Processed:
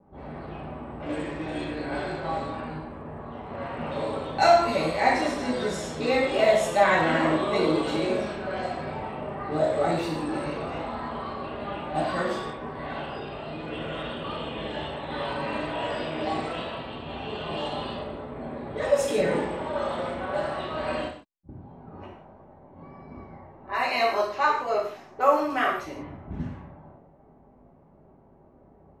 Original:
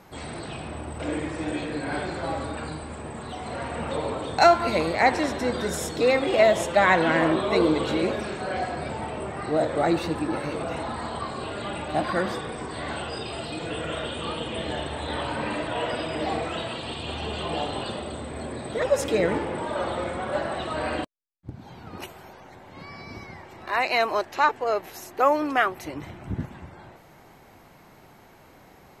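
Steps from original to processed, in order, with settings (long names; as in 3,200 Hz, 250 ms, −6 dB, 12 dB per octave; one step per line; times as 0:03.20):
low-pass that shuts in the quiet parts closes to 540 Hz, open at −22 dBFS
pitch vibrato 0.8 Hz 11 cents
reverb whose tail is shaped and stops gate 210 ms falling, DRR −5.5 dB
level −8 dB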